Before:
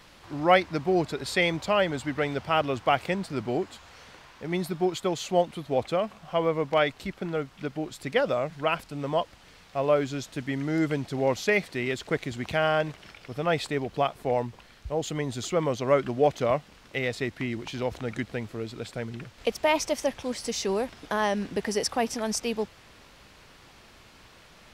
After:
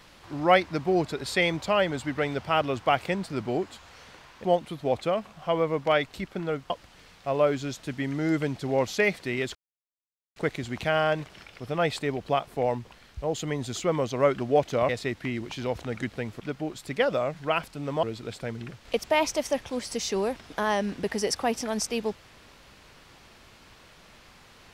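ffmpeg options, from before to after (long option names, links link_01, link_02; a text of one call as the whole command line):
ffmpeg -i in.wav -filter_complex "[0:a]asplit=7[link_01][link_02][link_03][link_04][link_05][link_06][link_07];[link_01]atrim=end=4.442[link_08];[link_02]atrim=start=5.298:end=7.562[link_09];[link_03]atrim=start=9.188:end=12.04,asetpts=PTS-STARTPTS,afade=type=out:start_time=2.848:duration=0.004:curve=hsin,apad=pad_dur=0.81[link_10];[link_04]atrim=start=12.04:end=16.572,asetpts=PTS-STARTPTS,afade=type=in:duration=0.004:curve=hsin[link_11];[link_05]atrim=start=17.048:end=18.562[link_12];[link_06]atrim=start=7.558:end=9.192[link_13];[link_07]atrim=start=18.558[link_14];[link_08][link_09]acrossfade=duration=0.004:curve1=hsin:curve2=hsin[link_15];[link_10][link_11]concat=n=2:v=0:a=1[link_16];[link_15][link_16]acrossfade=duration=0.004:curve1=hsin:curve2=hsin[link_17];[link_17][link_12]acrossfade=duration=0.004:curve1=hsin:curve2=hsin[link_18];[link_18][link_13]acrossfade=duration=0.004:curve1=hsin:curve2=hsin[link_19];[link_19][link_14]acrossfade=duration=0.004:curve1=hsin:curve2=hsin" out.wav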